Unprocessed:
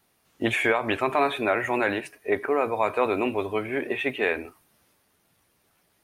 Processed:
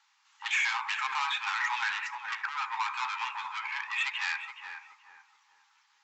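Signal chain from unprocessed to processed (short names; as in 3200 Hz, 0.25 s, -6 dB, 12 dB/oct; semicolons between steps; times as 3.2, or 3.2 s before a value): soft clip -26 dBFS, distortion -7 dB; brick-wall FIR band-pass 790–7800 Hz; tape echo 0.425 s, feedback 42%, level -4 dB, low-pass 1100 Hz; gain +3 dB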